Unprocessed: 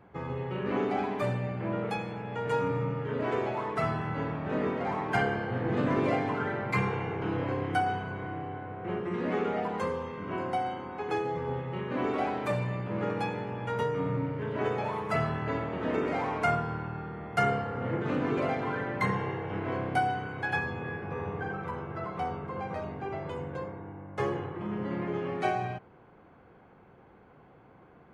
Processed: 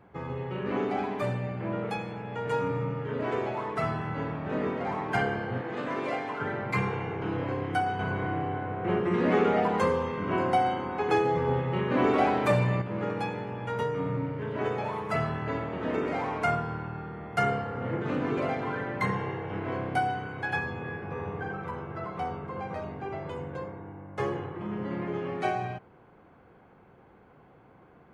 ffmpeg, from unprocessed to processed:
-filter_complex "[0:a]asettb=1/sr,asplit=3[a][b][c];[a]atrim=end=5.614[d];[b]atrim=start=5.61:end=6.41,asetpts=PTS-STARTPTS,afade=t=in:d=0.004:c=qsin,afade=t=out:st=0.796:d=0.004:c=qsin,highpass=f=590:p=1[e];[c]atrim=start=6.406[f];[d][e]acrossfade=d=0.004:c1=hsin:c2=qsin[g];[g][f]acrossfade=d=0.004:c1=qsin:c2=hsin,asettb=1/sr,asplit=3[h][i][j];[h]atrim=end=7.994[k];[i]atrim=start=7.99:end=12.82,asetpts=PTS-STARTPTS,afade=t=in:d=0.004:c=qsin,afade=t=out:st=4.826:d=0.004:c=qsin,acontrast=61[l];[j]atrim=start=12.816[m];[k][l]acrossfade=d=0.004:c1=hsin:c2=qsin[n];[n][m]acrossfade=d=0.004:c1=qsin:c2=hsin"

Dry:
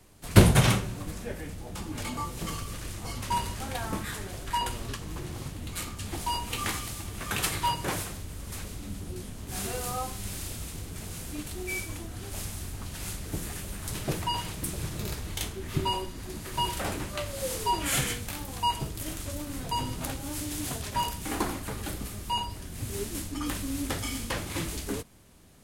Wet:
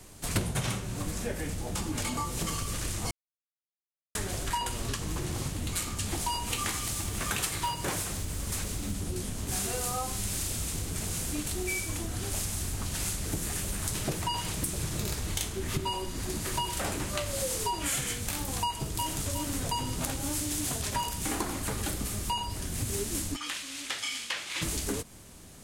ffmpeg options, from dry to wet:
-filter_complex "[0:a]asettb=1/sr,asplit=3[a][b][c];[a]atrim=end=6.824[d];[b]atrim=start=6.82:end=8.92,asetpts=PTS-STARTPTS,afade=t=in:d=0.004:c=qsin,afade=t=out:st=2.096:d=0.004:c=qsin,acrusher=bits=5:mode=log:mix=0:aa=0.000001[e];[c]atrim=start=8.916[f];[d][e]acrossfade=d=0.004:c1=hsin:c2=qsin[g];[g][f]acrossfade=d=0.004:c1=qsin:c2=hsin,asplit=2[h][i];[i]afade=t=in:st=18.62:d=0.01,afade=t=out:st=19.34:d=0.01,aecho=0:1:360|720|1080|1440:0.473151|0.165603|0.057961|0.0202864[j];[h][j]amix=inputs=2:normalize=0,asplit=3[k][l][m];[k]afade=t=out:st=23.35:d=0.02[n];[l]bandpass=f=2.8k:t=q:w=1.1,afade=t=in:st=23.35:d=0.02,afade=t=out:st=24.61:d=0.02[o];[m]afade=t=in:st=24.61:d=0.02[p];[n][o][p]amix=inputs=3:normalize=0,asplit=3[q][r][s];[q]atrim=end=3.11,asetpts=PTS-STARTPTS,afade=t=out:st=3.106:d=0.004:c=hsin[t];[r]atrim=start=3.11:end=4.15,asetpts=PTS-STARTPTS,volume=0[u];[s]atrim=start=4.15,asetpts=PTS-STARTPTS,afade=t=in:d=0.004:c=hsin[v];[t][u][v]concat=n=3:v=0:a=1,equalizer=f=7.5k:t=o:w=1.2:g=5.5,acompressor=threshold=-34dB:ratio=6,volume=5.5dB"

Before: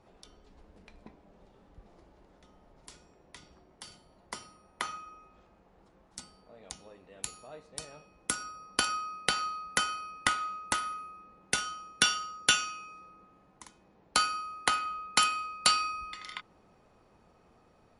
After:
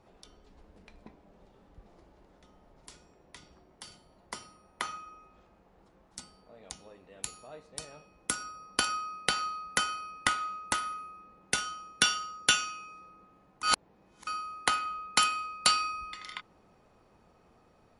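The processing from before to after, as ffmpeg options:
-filter_complex "[0:a]asplit=3[a][b][c];[a]atrim=end=13.632[d];[b]atrim=start=13.628:end=14.272,asetpts=PTS-STARTPTS,areverse[e];[c]atrim=start=14.268[f];[d][e]acrossfade=d=0.004:c1=hsin:c2=hsin[g];[g][f]acrossfade=d=0.004:c1=hsin:c2=hsin"

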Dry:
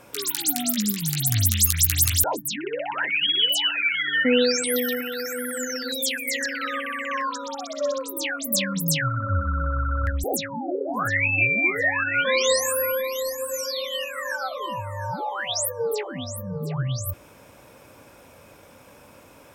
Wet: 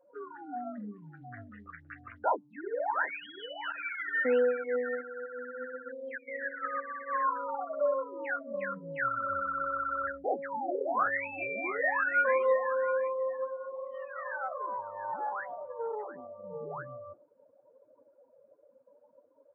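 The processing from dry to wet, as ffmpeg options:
-filter_complex "[0:a]asettb=1/sr,asplit=3[a][b][c];[a]atrim=end=0.524[d];[b]atrim=start=0.52:end=1.69,asetpts=PTS-STARTPTS,afade=t=in:d=0.004:c=qsin,afade=t=out:st=1.166:d=0.004:c=qsin,asplit=2[e][f];[f]adelay=38,volume=-9.5dB[g];[e][g]amix=inputs=2:normalize=0,atrim=end_sample=51597[h];[c]atrim=start=1.686[i];[d][h]acrossfade=d=0.004:c1=hsin:c2=qsin[j];[j][i]acrossfade=d=0.004:c1=qsin:c2=hsin,asettb=1/sr,asplit=3[k][l][m];[k]atrim=end=3.724[n];[l]atrim=start=3.72:end=7.25,asetpts=PTS-STARTPTS,afade=t=in:d=0.004:c=qsin,afade=t=out:st=3.526:d=0.004:c=qsin,agate=range=-33dB:threshold=-26dB:ratio=3:release=100:detection=peak[o];[m]atrim=start=7.246[p];[n][o]acrossfade=d=0.004:c1=hsin:c2=qsin[q];[q][p]acrossfade=d=0.004:c1=qsin:c2=hsin,asettb=1/sr,asplit=3[r][s][t];[r]atrim=end=13.484[u];[s]atrim=start=13.48:end=16.44,asetpts=PTS-STARTPTS,afade=t=in:d=0.004:c=qsin,afade=t=out:st=2.956:d=0.004:c=qsin,aeval=exprs='(tanh(20*val(0)+0.65)-tanh(0.65))/20':c=same[v];[t]atrim=start=16.436[w];[u][v]acrossfade=d=0.004:c1=hsin:c2=qsin[x];[x][w]acrossfade=d=0.004:c1=qsin:c2=hsin,lowpass=f=1.5k:w=0.5412,lowpass=f=1.5k:w=1.3066,afftdn=nr=31:nf=-40,highpass=560"

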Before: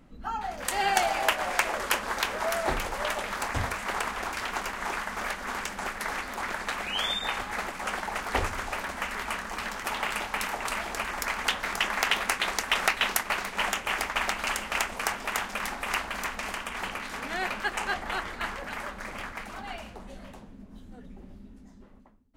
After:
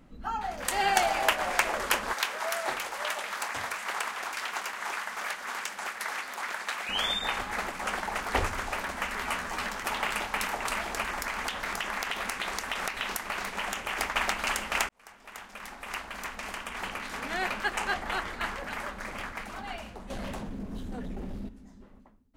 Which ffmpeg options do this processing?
-filter_complex "[0:a]asettb=1/sr,asplit=3[a][b][c];[a]atrim=end=2.134[d];[b]atrim=start=2.13:end=6.89,asetpts=PTS-STARTPTS,afade=t=in:d=0.004:c=qsin,afade=t=out:st=4.756:d=0.004:c=qsin,highpass=f=920:p=1[e];[c]atrim=start=6.886[f];[d][e]acrossfade=d=0.004:c1=hsin:c2=qsin[g];[g][f]acrossfade=d=0.004:c1=qsin:c2=hsin,asettb=1/sr,asplit=3[h][i][j];[h]atrim=end=9.224[k];[i]atrim=start=9.22:end=9.67,asetpts=PTS-STARTPTS,afade=t=in:d=0.004:c=qsin,afade=t=out:st=0.446:d=0.004:c=qsin,asplit=2[l][m];[m]adelay=12,volume=-5dB[n];[l][n]amix=inputs=2:normalize=0,atrim=end_sample=19845[o];[j]atrim=start=9.666[p];[k][o]acrossfade=d=0.004:c1=hsin:c2=qsin[q];[q][p]acrossfade=d=0.004:c1=qsin:c2=hsin,asettb=1/sr,asplit=3[r][s][t];[r]atrim=end=11.134[u];[s]atrim=start=11.13:end=13.97,asetpts=PTS-STARTPTS,afade=t=in:d=0.004:c=qsin,afade=t=out:st=2.836:d=0.004:c=qsin,acompressor=threshold=-28dB:ratio=6:attack=3.2:release=140:knee=1:detection=peak[v];[t]atrim=start=13.966[w];[u][v]acrossfade=d=0.004:c1=hsin:c2=qsin[x];[x][w]acrossfade=d=0.004:c1=qsin:c2=hsin,asettb=1/sr,asplit=3[y][z][aa];[y]atrim=end=20.104[ab];[z]atrim=start=20.1:end=21.49,asetpts=PTS-STARTPTS,afade=t=in:d=0.004:c=qsin,afade=t=out:st=1.386:d=0.004:c=qsin,aeval=exprs='0.0251*sin(PI/2*2.51*val(0)/0.0251)':c=same[ac];[aa]atrim=start=21.486[ad];[ab][ac]acrossfade=d=0.004:c1=hsin:c2=qsin[ae];[ae][ad]acrossfade=d=0.004:c1=qsin:c2=hsin,asplit=2[af][ag];[af]atrim=end=14.89,asetpts=PTS-STARTPTS,afade=t=out:st=14.886:d=0.004:c=hsin[ah];[ag]atrim=start=14.89,asetpts=PTS-STARTPTS,afade=t=in:d=2.42[ai];[ah][ai]concat=n=2:v=0:a=1"

